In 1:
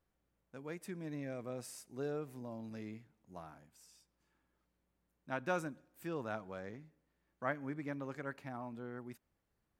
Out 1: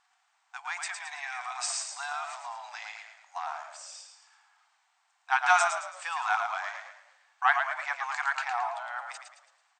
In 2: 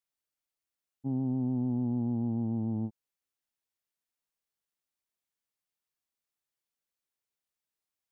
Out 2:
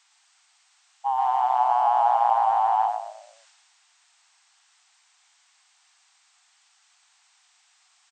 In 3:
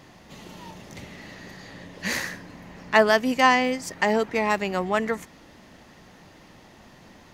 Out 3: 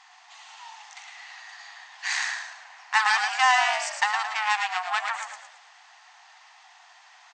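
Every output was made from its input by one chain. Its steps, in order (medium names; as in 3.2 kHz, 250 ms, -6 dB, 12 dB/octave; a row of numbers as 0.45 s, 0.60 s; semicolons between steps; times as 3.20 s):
transient shaper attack 0 dB, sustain +5 dB; Chebyshev shaper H 8 -19 dB, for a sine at -3 dBFS; brick-wall FIR band-pass 700–8700 Hz; on a send: frequency-shifting echo 110 ms, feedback 41%, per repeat -42 Hz, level -6 dB; on the sum: loudness maximiser +8 dB; peak normalisation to -9 dBFS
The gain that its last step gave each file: +9.5 dB, +22.5 dB, -8.0 dB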